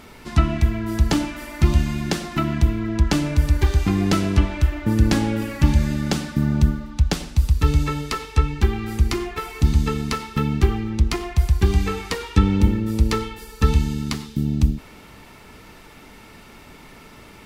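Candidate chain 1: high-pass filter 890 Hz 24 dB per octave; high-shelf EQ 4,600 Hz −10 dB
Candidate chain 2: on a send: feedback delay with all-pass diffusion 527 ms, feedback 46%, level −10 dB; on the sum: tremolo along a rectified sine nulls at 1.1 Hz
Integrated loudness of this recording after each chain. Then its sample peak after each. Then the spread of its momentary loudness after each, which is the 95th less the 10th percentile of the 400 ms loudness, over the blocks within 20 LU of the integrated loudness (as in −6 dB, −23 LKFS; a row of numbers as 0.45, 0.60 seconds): −34.0, −23.5 LKFS; −12.0, −3.5 dBFS; 18, 14 LU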